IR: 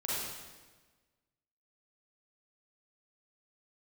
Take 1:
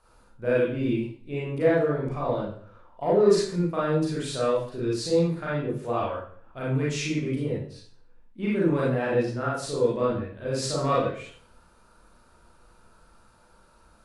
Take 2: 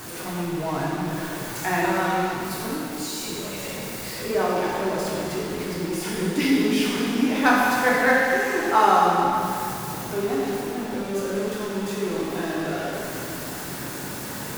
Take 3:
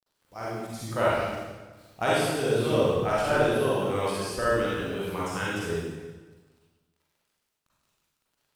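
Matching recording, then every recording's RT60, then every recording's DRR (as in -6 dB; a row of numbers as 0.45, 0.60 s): 3; 0.50, 2.8, 1.3 s; -7.5, -6.5, -7.5 dB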